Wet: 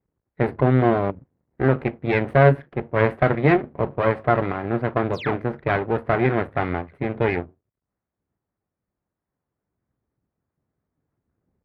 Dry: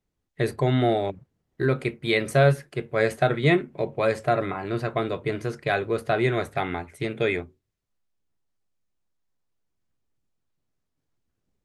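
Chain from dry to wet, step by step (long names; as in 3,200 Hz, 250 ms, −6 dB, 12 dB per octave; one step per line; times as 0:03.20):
flat-topped bell 4,400 Hz −10 dB
sound drawn into the spectrogram fall, 0:05.13–0:05.35, 540–7,600 Hz −30 dBFS
half-wave rectification
high-pass filter 57 Hz
high-frequency loss of the air 390 metres
one half of a high-frequency compander decoder only
level +8.5 dB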